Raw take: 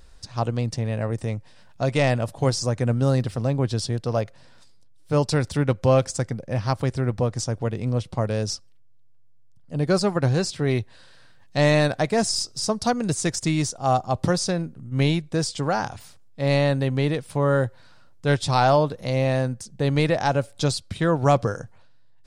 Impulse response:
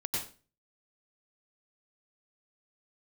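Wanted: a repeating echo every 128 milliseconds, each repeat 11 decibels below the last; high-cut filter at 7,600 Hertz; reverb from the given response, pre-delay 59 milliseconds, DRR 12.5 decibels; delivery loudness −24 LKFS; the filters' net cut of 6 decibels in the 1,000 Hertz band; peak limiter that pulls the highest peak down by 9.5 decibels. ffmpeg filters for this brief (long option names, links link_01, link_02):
-filter_complex "[0:a]lowpass=7600,equalizer=frequency=1000:width_type=o:gain=-9,alimiter=limit=-18.5dB:level=0:latency=1,aecho=1:1:128|256|384:0.282|0.0789|0.0221,asplit=2[link_01][link_02];[1:a]atrim=start_sample=2205,adelay=59[link_03];[link_02][link_03]afir=irnorm=-1:irlink=0,volume=-16.5dB[link_04];[link_01][link_04]amix=inputs=2:normalize=0,volume=4dB"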